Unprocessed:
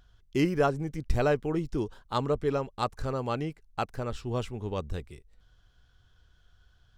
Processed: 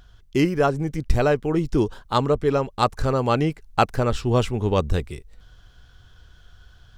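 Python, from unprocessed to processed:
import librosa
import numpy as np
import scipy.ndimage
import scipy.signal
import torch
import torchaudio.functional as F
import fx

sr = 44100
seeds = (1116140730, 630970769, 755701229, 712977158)

y = fx.rider(x, sr, range_db=10, speed_s=0.5)
y = F.gain(torch.from_numpy(y), 8.5).numpy()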